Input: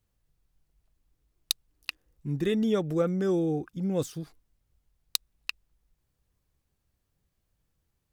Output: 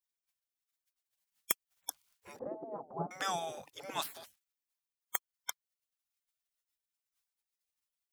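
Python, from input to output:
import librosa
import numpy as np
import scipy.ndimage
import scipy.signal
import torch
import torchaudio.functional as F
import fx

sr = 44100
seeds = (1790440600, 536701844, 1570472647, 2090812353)

y = scipy.signal.sosfilt(scipy.signal.butter(2, 300.0, 'highpass', fs=sr, output='sos'), x)
y = fx.spec_gate(y, sr, threshold_db=-20, keep='weak')
y = fx.steep_lowpass(y, sr, hz=890.0, slope=36, at=(2.39, 3.11))
y = y * 10.0 ** (10.5 / 20.0)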